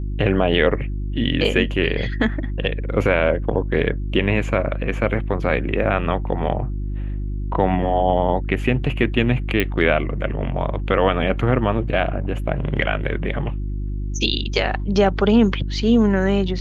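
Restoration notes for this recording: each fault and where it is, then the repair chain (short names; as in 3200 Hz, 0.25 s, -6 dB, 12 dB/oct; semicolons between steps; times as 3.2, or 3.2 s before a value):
hum 50 Hz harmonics 7 -25 dBFS
9.6 pop -6 dBFS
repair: de-click; de-hum 50 Hz, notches 7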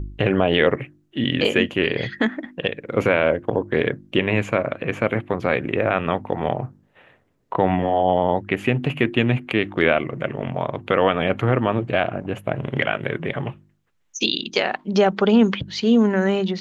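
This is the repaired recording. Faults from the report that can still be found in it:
none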